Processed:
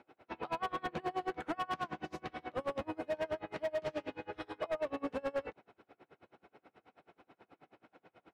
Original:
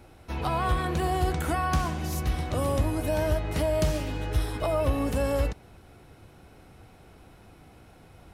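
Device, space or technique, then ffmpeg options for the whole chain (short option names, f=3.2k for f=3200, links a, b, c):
helicopter radio: -af "highpass=310,lowpass=2.6k,aeval=exprs='val(0)*pow(10,-31*(0.5-0.5*cos(2*PI*9.3*n/s))/20)':c=same,asoftclip=type=hard:threshold=-30dB"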